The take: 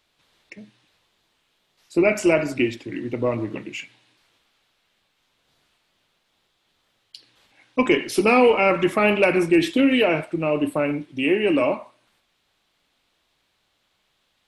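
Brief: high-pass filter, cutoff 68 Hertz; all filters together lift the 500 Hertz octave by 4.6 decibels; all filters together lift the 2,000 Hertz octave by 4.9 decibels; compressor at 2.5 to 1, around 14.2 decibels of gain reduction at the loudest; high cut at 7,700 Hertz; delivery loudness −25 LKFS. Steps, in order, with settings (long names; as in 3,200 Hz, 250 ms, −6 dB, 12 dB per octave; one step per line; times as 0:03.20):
high-pass filter 68 Hz
low-pass filter 7,700 Hz
parametric band 500 Hz +5.5 dB
parametric band 2,000 Hz +6 dB
downward compressor 2.5 to 1, threshold −29 dBFS
level +3 dB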